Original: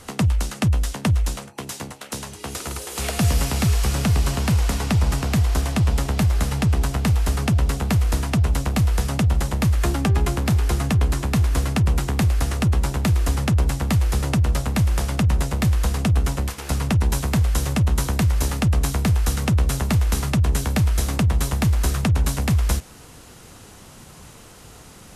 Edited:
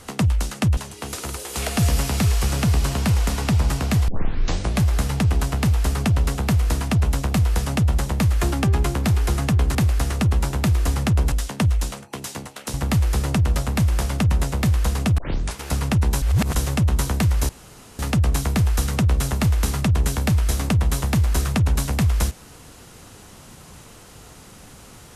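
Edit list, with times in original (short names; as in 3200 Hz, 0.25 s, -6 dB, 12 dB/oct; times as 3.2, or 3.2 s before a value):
0.77–2.19 move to 13.73
5.5 tape start 0.74 s
11.17–12.16 cut
16.17 tape start 0.39 s
17.21–17.54 reverse
18.48 insert room tone 0.50 s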